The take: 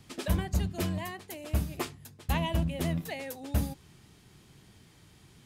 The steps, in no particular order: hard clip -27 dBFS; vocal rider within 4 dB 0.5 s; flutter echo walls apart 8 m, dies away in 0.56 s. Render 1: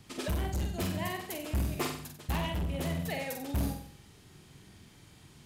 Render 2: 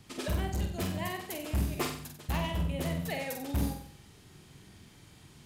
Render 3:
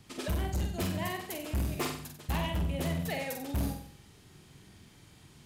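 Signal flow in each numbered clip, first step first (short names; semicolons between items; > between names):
flutter echo > hard clip > vocal rider; hard clip > vocal rider > flutter echo; vocal rider > flutter echo > hard clip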